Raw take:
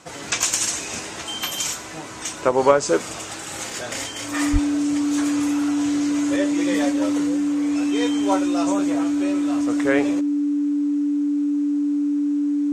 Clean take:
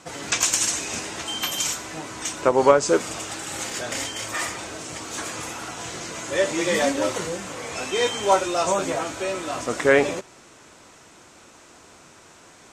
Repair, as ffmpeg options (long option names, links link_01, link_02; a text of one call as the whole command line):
ffmpeg -i in.wav -filter_complex "[0:a]bandreject=frequency=290:width=30,asplit=3[link_01][link_02][link_03];[link_01]afade=type=out:start_time=4.52:duration=0.02[link_04];[link_02]highpass=frequency=140:width=0.5412,highpass=frequency=140:width=1.3066,afade=type=in:start_time=4.52:duration=0.02,afade=type=out:start_time=4.64:duration=0.02[link_05];[link_03]afade=type=in:start_time=4.64:duration=0.02[link_06];[link_04][link_05][link_06]amix=inputs=3:normalize=0,asetnsamples=nb_out_samples=441:pad=0,asendcmd='6.36 volume volume 4.5dB',volume=0dB" out.wav